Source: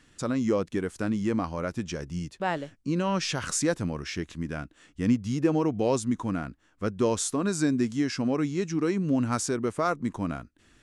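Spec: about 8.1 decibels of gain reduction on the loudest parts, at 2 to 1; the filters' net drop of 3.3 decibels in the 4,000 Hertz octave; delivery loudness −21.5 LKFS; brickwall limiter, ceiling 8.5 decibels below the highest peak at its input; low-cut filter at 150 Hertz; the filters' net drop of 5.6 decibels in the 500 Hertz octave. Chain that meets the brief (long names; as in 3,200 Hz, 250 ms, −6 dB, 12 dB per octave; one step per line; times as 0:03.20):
high-pass filter 150 Hz
parametric band 500 Hz −7 dB
parametric band 4,000 Hz −4.5 dB
downward compressor 2 to 1, threshold −36 dBFS
level +18 dB
brickwall limiter −11.5 dBFS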